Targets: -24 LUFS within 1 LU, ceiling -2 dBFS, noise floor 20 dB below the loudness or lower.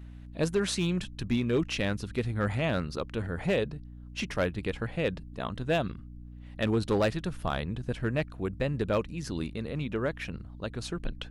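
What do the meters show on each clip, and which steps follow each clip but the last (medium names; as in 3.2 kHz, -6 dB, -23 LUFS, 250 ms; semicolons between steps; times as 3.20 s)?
clipped samples 0.6%; clipping level -19.5 dBFS; hum 60 Hz; highest harmonic 300 Hz; hum level -42 dBFS; loudness -31.5 LUFS; peak level -19.5 dBFS; loudness target -24.0 LUFS
-> clip repair -19.5 dBFS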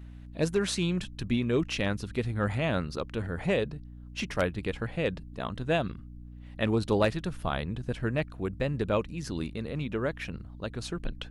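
clipped samples 0.0%; hum 60 Hz; highest harmonic 300 Hz; hum level -42 dBFS
-> de-hum 60 Hz, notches 5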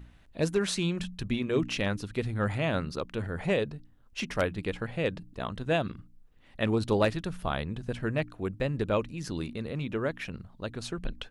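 hum not found; loudness -31.5 LUFS; peak level -10.5 dBFS; loudness target -24.0 LUFS
-> trim +7.5 dB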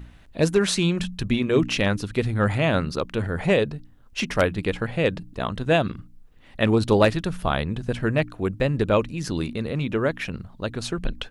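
loudness -24.0 LUFS; peak level -3.0 dBFS; noise floor -50 dBFS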